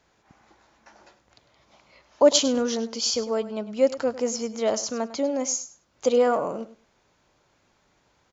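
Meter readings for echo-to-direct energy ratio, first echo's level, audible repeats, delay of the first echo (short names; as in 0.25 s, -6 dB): -15.0 dB, -15.0 dB, 2, 0.101 s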